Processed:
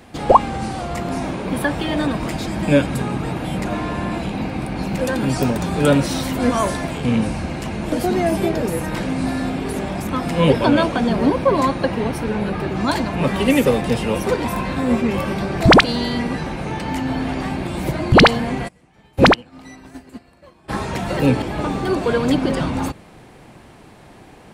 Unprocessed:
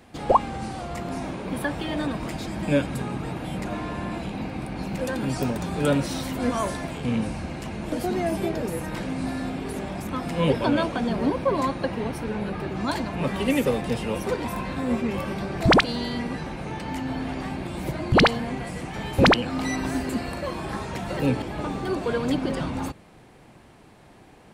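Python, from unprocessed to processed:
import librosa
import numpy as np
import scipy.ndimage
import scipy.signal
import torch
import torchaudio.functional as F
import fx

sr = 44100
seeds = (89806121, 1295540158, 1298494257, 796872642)

y = fx.upward_expand(x, sr, threshold_db=-32.0, expansion=2.5, at=(18.67, 20.68), fade=0.02)
y = F.gain(torch.from_numpy(y), 7.0).numpy()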